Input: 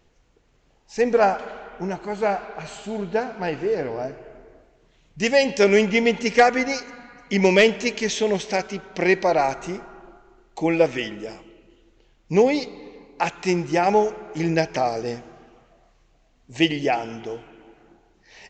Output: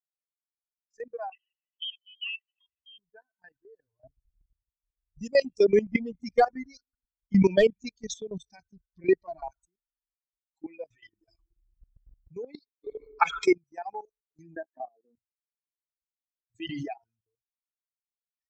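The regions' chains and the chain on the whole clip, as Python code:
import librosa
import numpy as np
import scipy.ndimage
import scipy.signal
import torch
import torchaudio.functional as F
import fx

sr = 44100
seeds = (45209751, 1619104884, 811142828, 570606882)

y = fx.chain(x, sr, fx.low_shelf(hz=100.0, db=-7.5),
    fx.notch(hz=1100.0, q=21.0),
    fx.freq_invert(carrier_hz=3400), at=(1.32, 2.98))
y = fx.chain(y, sr, fx.low_shelf(hz=380.0, db=10.0),
    fx.filter_lfo_notch(shape='sine', hz=2.6, low_hz=450.0, high_hz=2300.0, q=2.4), at=(4.04, 9.5))
y = fx.chain(y, sr, fx.comb(ms=6.0, depth=0.38),
    fx.env_flatten(amount_pct=50), at=(10.9, 12.33))
y = fx.chain(y, sr, fx.small_body(hz=(430.0, 1300.0, 2200.0, 3300.0), ring_ms=30, db=14),
    fx.env_flatten(amount_pct=70), at=(12.84, 13.53))
y = fx.chain(y, sr, fx.crossing_spikes(level_db=-23.5),
    fx.ellip_bandpass(low_hz=240.0, high_hz=1700.0, order=3, stop_db=40),
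    fx.low_shelf(hz=370.0, db=11.0), at=(14.56, 15.17))
y = fx.chain(y, sr, fx.highpass(hz=130.0, slope=6),
    fx.transient(attack_db=10, sustain_db=5),
    fx.pre_swell(db_per_s=25.0), at=(16.65, 17.19))
y = fx.bin_expand(y, sr, power=3.0)
y = fx.transient(y, sr, attack_db=1, sustain_db=-6)
y = fx.level_steps(y, sr, step_db=17)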